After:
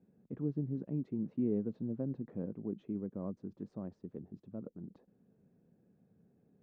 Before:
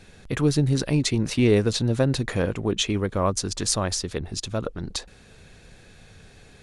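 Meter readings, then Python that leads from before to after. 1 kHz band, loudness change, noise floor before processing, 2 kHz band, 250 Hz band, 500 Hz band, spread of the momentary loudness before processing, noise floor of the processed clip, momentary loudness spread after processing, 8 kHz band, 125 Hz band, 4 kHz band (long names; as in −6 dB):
−28.0 dB, −15.5 dB, −51 dBFS, below −35 dB, −12.0 dB, −18.0 dB, 10 LU, −73 dBFS, 14 LU, below −40 dB, −17.5 dB, below −40 dB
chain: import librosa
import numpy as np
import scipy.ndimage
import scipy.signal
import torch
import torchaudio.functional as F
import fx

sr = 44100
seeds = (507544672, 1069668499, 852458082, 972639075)

y = fx.ladder_bandpass(x, sr, hz=240.0, resonance_pct=40)
y = y * 10.0 ** (-3.0 / 20.0)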